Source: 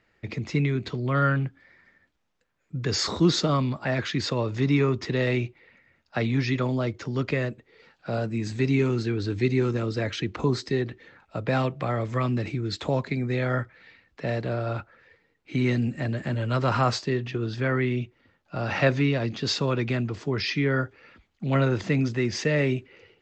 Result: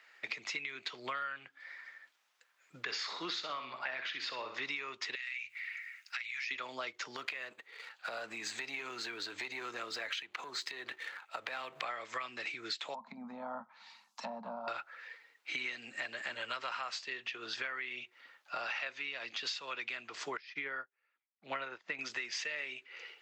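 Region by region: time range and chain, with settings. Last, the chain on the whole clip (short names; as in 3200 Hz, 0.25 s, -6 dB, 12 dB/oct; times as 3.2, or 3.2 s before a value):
2.83–4.65 air absorption 150 m + flutter echo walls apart 10.6 m, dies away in 0.41 s
5.15–6.51 EQ curve 110 Hz 0 dB, 210 Hz -30 dB, 370 Hz -30 dB, 2200 Hz +10 dB, 3500 Hz +1 dB, 7600 Hz +9 dB + compressor, threshold -39 dBFS
7.16–11.83 sample leveller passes 1 + bell 5400 Hz -6 dB 0.26 oct + compressor 10:1, threshold -31 dBFS
12.94–14.68 HPF 190 Hz 24 dB/oct + treble ducked by the level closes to 680 Hz, closed at -26 dBFS + EQ curve 130 Hz 0 dB, 220 Hz +13 dB, 350 Hz -25 dB, 930 Hz +6 dB, 1800 Hz -19 dB, 6200 Hz +5 dB
20.37–21.99 LPF 1800 Hz 6 dB/oct + upward expander 2.5:1, over -41 dBFS
whole clip: HPF 1100 Hz 12 dB/oct; dynamic EQ 2700 Hz, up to +6 dB, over -46 dBFS, Q 1.5; compressor 12:1, threshold -45 dBFS; gain +8.5 dB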